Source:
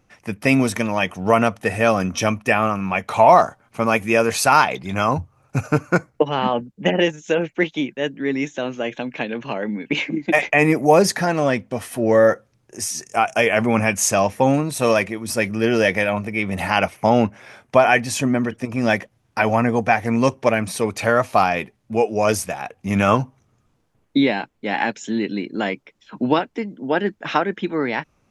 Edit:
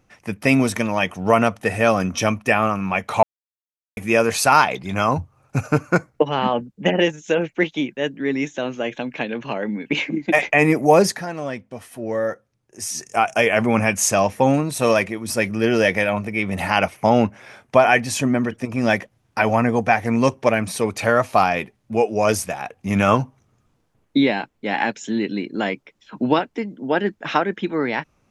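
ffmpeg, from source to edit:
ffmpeg -i in.wav -filter_complex "[0:a]asplit=5[link_01][link_02][link_03][link_04][link_05];[link_01]atrim=end=3.23,asetpts=PTS-STARTPTS,afade=type=out:start_time=3.226:duration=0.004:curve=hsin[link_06];[link_02]atrim=start=3.23:end=3.97,asetpts=PTS-STARTPTS,volume=0[link_07];[link_03]atrim=start=3.97:end=11.22,asetpts=PTS-STARTPTS,afade=type=in:duration=0.004:curve=hsin,afade=type=out:start_time=7.05:duration=0.2:silence=0.354813[link_08];[link_04]atrim=start=11.22:end=12.74,asetpts=PTS-STARTPTS,volume=-9dB[link_09];[link_05]atrim=start=12.74,asetpts=PTS-STARTPTS,afade=type=in:duration=0.2:silence=0.354813[link_10];[link_06][link_07][link_08][link_09][link_10]concat=n=5:v=0:a=1" out.wav

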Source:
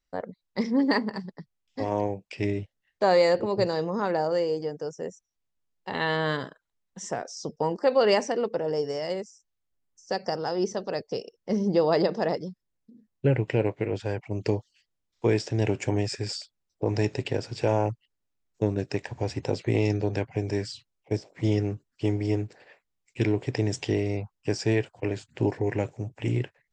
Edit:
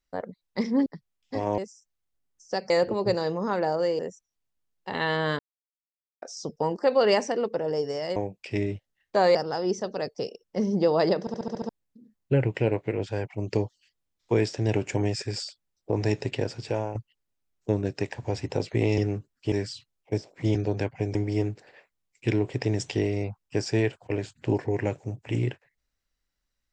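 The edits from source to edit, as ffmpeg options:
ffmpeg -i in.wav -filter_complex "[0:a]asplit=21[link_01][link_02][link_03][link_04][link_05][link_06][link_07][link_08][link_09][link_10][link_11][link_12][link_13][link_14][link_15][link_16][link_17][link_18][link_19][link_20][link_21];[link_01]atrim=end=0.862[link_22];[link_02]atrim=start=1.308:end=2.032[link_23];[link_03]atrim=start=9.158:end=10.282[link_24];[link_04]atrim=start=3.218:end=4.512[link_25];[link_05]atrim=start=4.988:end=6.39,asetpts=PTS-STARTPTS,afade=type=out:start_time=1.398:duration=0.004:curve=hsin[link_26];[link_06]atrim=start=6.39:end=7.22,asetpts=PTS-STARTPTS,volume=0[link_27];[link_07]atrim=start=7.22:end=9.162,asetpts=PTS-STARTPTS,afade=type=in:duration=0.004:curve=hsin[link_28];[link_08]atrim=start=2.028:end=3.222[link_29];[link_09]atrim=start=10.278:end=12.202[link_30];[link_10]atrim=start=12.128:end=12.202[link_31];[link_11]atrim=start=12.128:end=12.202[link_32];[link_12]atrim=start=12.128:end=12.202[link_33];[link_13]atrim=start=12.128:end=12.202[link_34];[link_14]atrim=start=12.128:end=12.202[link_35];[link_15]atrim=start=12.128:end=12.202[link_36];[link_16]atrim=start=12.618:end=17.88,asetpts=PTS-STARTPTS,afade=type=out:start_time=4.842:duration=0.42:silence=0.266073[link_37];[link_17]atrim=start=17.88:end=19.912,asetpts=PTS-STARTPTS,afade=type=in:duration=0.004:curve=hsin:silence=0.266073[link_38];[link_18]atrim=start=21.538:end=22.082[link_39];[link_19]atrim=start=20.508:end=21.542[link_40];[link_20]atrim=start=19.908:end=20.512[link_41];[link_21]atrim=start=22.078[link_42];[link_22][link_23]acrossfade=duration=0.004:curve1=hsin:curve2=hsin[link_43];[link_43][link_24]acrossfade=duration=0.004:curve1=hsin:curve2=hsin[link_44];[link_44][link_25]acrossfade=duration=0.004:curve1=hsin:curve2=hsin[link_45];[link_26][link_27][link_28]concat=n=3:v=0:a=1[link_46];[link_45][link_46]acrossfade=duration=0.004:curve1=hsin:curve2=hsin[link_47];[link_47][link_29]acrossfade=duration=0.004:curve1=hsin:curve2=hsin[link_48];[link_48][link_30]acrossfade=duration=0.004:curve1=hsin:curve2=hsin[link_49];[link_49][link_31]acrossfade=duration=0.004:curve1=hsin:curve2=hsin[link_50];[link_50][link_32]acrossfade=duration=0.004:curve1=hsin:curve2=hsin[link_51];[link_51][link_33]acrossfade=duration=0.004:curve1=hsin:curve2=hsin[link_52];[link_52][link_34]acrossfade=duration=0.004:curve1=hsin:curve2=hsin[link_53];[link_53][link_35]acrossfade=duration=0.004:curve1=hsin:curve2=hsin[link_54];[link_54][link_36]acrossfade=duration=0.004:curve1=hsin:curve2=hsin[link_55];[link_37][link_38]concat=n=2:v=0:a=1[link_56];[link_55][link_56]acrossfade=duration=0.004:curve1=hsin:curve2=hsin[link_57];[link_57][link_39]acrossfade=duration=0.004:curve1=hsin:curve2=hsin[link_58];[link_58][link_40]acrossfade=duration=0.004:curve1=hsin:curve2=hsin[link_59];[link_59][link_41]acrossfade=duration=0.004:curve1=hsin:curve2=hsin[link_60];[link_60][link_42]acrossfade=duration=0.004:curve1=hsin:curve2=hsin" out.wav

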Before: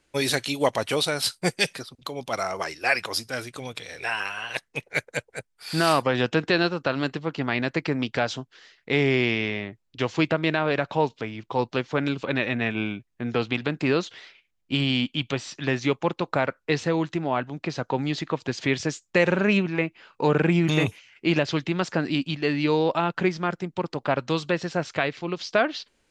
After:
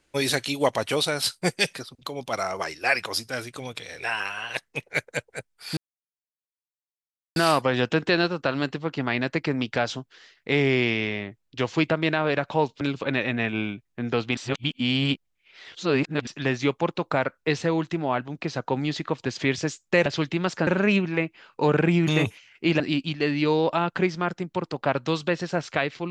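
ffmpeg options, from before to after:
ffmpeg -i in.wav -filter_complex "[0:a]asplit=8[link_01][link_02][link_03][link_04][link_05][link_06][link_07][link_08];[link_01]atrim=end=5.77,asetpts=PTS-STARTPTS,afade=type=out:start_time=5.766:duration=0.004:curve=hsin,apad=pad_dur=1.59[link_09];[link_02]atrim=start=5.77:end=11.222,asetpts=PTS-STARTPTS,afade=type=in:duration=0.004:curve=hsin[link_10];[link_03]atrim=start=12.028:end=13.592[link_11];[link_04]atrim=start=13.588:end=15.492,asetpts=PTS-STARTPTS,areverse[link_12];[link_05]atrim=start=15.488:end=19.282[link_13];[link_06]atrim=start=21.408:end=22.022[link_14];[link_07]atrim=start=19.278:end=21.412[link_15];[link_08]atrim=start=22.018[link_16];[link_09][link_10]concat=n=2:v=0:a=1[link_17];[link_17][link_11]acrossfade=duration=0.004:curve1=hsin:curve2=hsin[link_18];[link_18][link_12]acrossfade=duration=0.004:curve1=hsin:curve2=hsin[link_19];[link_19][link_13]acrossfade=duration=0.004:curve1=hsin:curve2=hsin[link_20];[link_20][link_14]acrossfade=duration=0.004:curve1=hsin:curve2=hsin[link_21];[link_21][link_15]acrossfade=duration=0.004:curve1=hsin:curve2=hsin[link_22];[link_22][link_16]acrossfade=duration=0.004:curve1=hsin:curve2=hsin" out.wav

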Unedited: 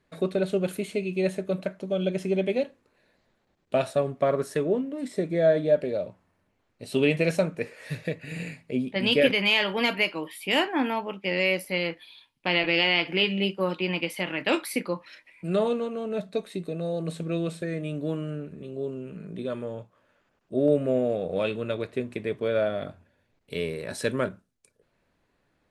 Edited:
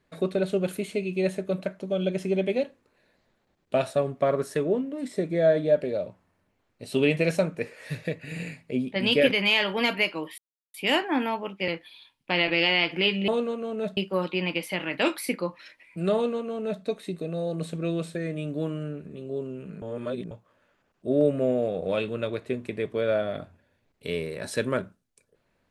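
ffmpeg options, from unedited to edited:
ffmpeg -i in.wav -filter_complex "[0:a]asplit=7[link_01][link_02][link_03][link_04][link_05][link_06][link_07];[link_01]atrim=end=10.38,asetpts=PTS-STARTPTS,afade=type=out:start_time=10.376:duration=0.004:curve=hsin,apad=pad_dur=0.36[link_08];[link_02]atrim=start=10.38:end=11.322,asetpts=PTS-STARTPTS,afade=type=in:duration=0.004:curve=hsin[link_09];[link_03]atrim=start=11.838:end=13.442[link_10];[link_04]atrim=start=15.608:end=16.302[link_11];[link_05]atrim=start=13.438:end=19.292[link_12];[link_06]atrim=start=19.288:end=19.782,asetpts=PTS-STARTPTS,areverse[link_13];[link_07]atrim=start=19.778[link_14];[link_08][link_09]concat=n=2:v=0:a=1[link_15];[link_15][link_10]acrossfade=duration=0.004:curve1=hsin:curve2=hsin[link_16];[link_16][link_11]acrossfade=duration=0.004:curve1=hsin:curve2=hsin[link_17];[link_17][link_12]acrossfade=duration=0.004:curve1=hsin:curve2=hsin[link_18];[link_18][link_13]acrossfade=duration=0.004:curve1=hsin:curve2=hsin[link_19];[link_19][link_14]acrossfade=duration=0.004:curve1=hsin:curve2=hsin" out.wav

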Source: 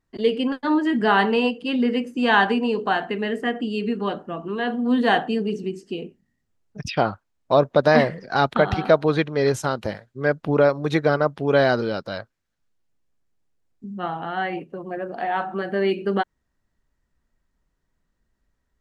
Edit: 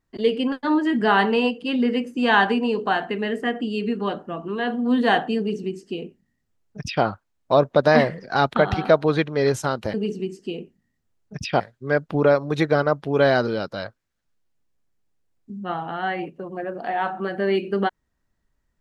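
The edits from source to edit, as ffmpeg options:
ffmpeg -i in.wav -filter_complex "[0:a]asplit=3[link_01][link_02][link_03];[link_01]atrim=end=9.942[link_04];[link_02]atrim=start=5.378:end=7.042[link_05];[link_03]atrim=start=9.938[link_06];[link_04][link_05]acrossfade=duration=0.004:curve1=hsin:curve2=hsin[link_07];[link_07][link_06]acrossfade=duration=0.004:curve1=hsin:curve2=hsin" out.wav

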